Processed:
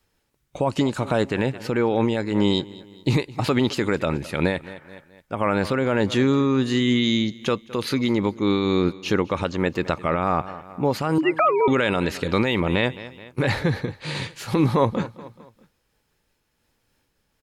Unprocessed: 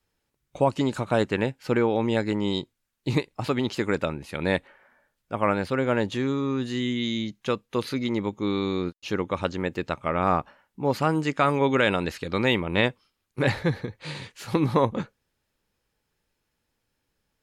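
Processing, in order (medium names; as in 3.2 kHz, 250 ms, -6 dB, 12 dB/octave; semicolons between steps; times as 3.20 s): 11.18–11.68 s: formants replaced by sine waves; feedback delay 213 ms, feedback 45%, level -21.5 dB; loudness maximiser +17 dB; random flutter of the level, depth 65%; trim -7 dB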